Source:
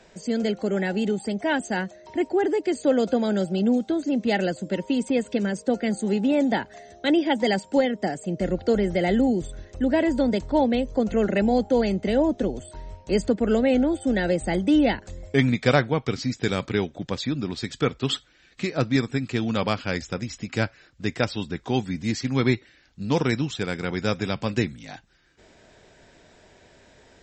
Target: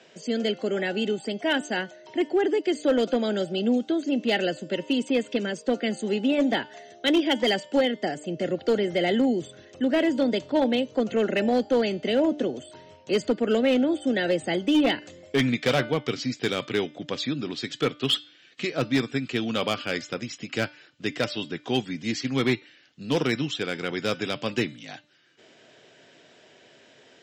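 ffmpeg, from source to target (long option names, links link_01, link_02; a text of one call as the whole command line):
ffmpeg -i in.wav -af "highpass=frequency=140:width=0.5412,highpass=frequency=140:width=1.3066,equalizer=frequency=190:width_type=q:width=4:gain=-8,equalizer=frequency=890:width_type=q:width=4:gain=-5,equalizer=frequency=3000:width_type=q:width=4:gain=8,lowpass=frequency=7300:width=0.5412,lowpass=frequency=7300:width=1.3066,bandreject=frequency=297.4:width_type=h:width=4,bandreject=frequency=594.8:width_type=h:width=4,bandreject=frequency=892.2:width_type=h:width=4,bandreject=frequency=1189.6:width_type=h:width=4,bandreject=frequency=1487:width_type=h:width=4,bandreject=frequency=1784.4:width_type=h:width=4,bandreject=frequency=2081.8:width_type=h:width=4,bandreject=frequency=2379.2:width_type=h:width=4,bandreject=frequency=2676.6:width_type=h:width=4,bandreject=frequency=2974:width_type=h:width=4,bandreject=frequency=3271.4:width_type=h:width=4,bandreject=frequency=3568.8:width_type=h:width=4,bandreject=frequency=3866.2:width_type=h:width=4,bandreject=frequency=4163.6:width_type=h:width=4,bandreject=frequency=4461:width_type=h:width=4,bandreject=frequency=4758.4:width_type=h:width=4,bandreject=frequency=5055.8:width_type=h:width=4,asoftclip=type=hard:threshold=-15.5dB" out.wav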